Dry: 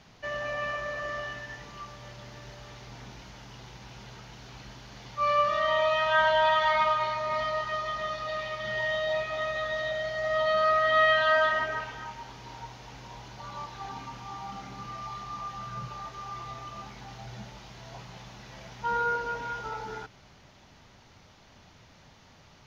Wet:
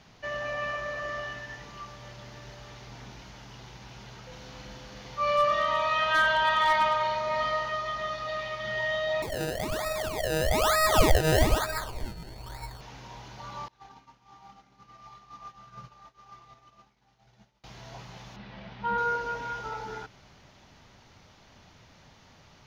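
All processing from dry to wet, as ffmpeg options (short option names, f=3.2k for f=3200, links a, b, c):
-filter_complex "[0:a]asettb=1/sr,asplit=3[a][b][c];[a]atrim=end=4.274[d];[b]atrim=start=4.27:end=7.7,asetpts=PTS-STARTPTS,afade=t=in:d=0.004:c=qsin,afade=t=out:st=3.426:d=0.004:c=qsin,aeval=exprs='val(0)+0.00562*sin(2*PI*510*n/s)':c=same,asplit=2[e][f];[f]adelay=44,volume=-3.5dB[g];[e][g]amix=inputs=2:normalize=0,atrim=end_sample=151263,asoftclip=type=hard:threshold=-17dB[h];[c]atrim=start=7.696[i];[d][h]acrossfade=d=0.004:c1=hsin:c2=qsin[j];[j][i]acrossfade=d=0.004:c1=qsin:c2=hsin,asettb=1/sr,asplit=3[k][l][m];[k]atrim=end=9.224[n];[l]atrim=start=9.22:end=12.81,asetpts=PTS-STARTPTS,afade=t=in:d=0.004:c=qsin,afade=t=out:st=3.586:d=0.004:c=qsin,acrusher=samples=27:mix=1:aa=0.000001:lfo=1:lforange=27:lforate=1.1,asubboost=boost=7:cutoff=78,aeval=exprs='val(0)+0.002*sin(2*PI*4400*n/s)':c=same[o];[m]atrim=start=12.806[p];[n][o]acrossfade=d=0.004:c1=hsin:c2=qsin[q];[q][p]acrossfade=d=0.004:c1=qsin:c2=hsin,asettb=1/sr,asplit=3[r][s][t];[r]atrim=end=13.684[u];[s]atrim=start=13.68:end=17.64,asetpts=PTS-STARTPTS,afade=t=in:d=0.004:c=qsin,afade=t=out:st=3.956:d=0.004:c=qsin,agate=range=-33dB:threshold=-31dB:ratio=3:release=100:detection=peak,equalizer=f=91:w=2.9:g=-8.5[v];[t]atrim=start=17.636[w];[u][v]acrossfade=d=0.004:c1=hsin:c2=qsin[x];[x][w]acrossfade=d=0.004:c1=qsin:c2=hsin,asettb=1/sr,asplit=3[y][z][aa];[y]atrim=end=18.364[ab];[z]atrim=start=18.36:end=18.98,asetpts=PTS-STARTPTS,afade=t=in:d=0.004:c=qsin,afade=t=out:st=0.616:d=0.004:c=qsin,lowpass=f=4k:w=0.5412,lowpass=f=4k:w=1.3066,equalizer=f=200:t=o:w=0.3:g=8.5[ac];[aa]atrim=start=18.976[ad];[ab][ac]acrossfade=d=0.004:c1=hsin:c2=qsin[ae];[ae][ad]acrossfade=d=0.004:c1=qsin:c2=hsin"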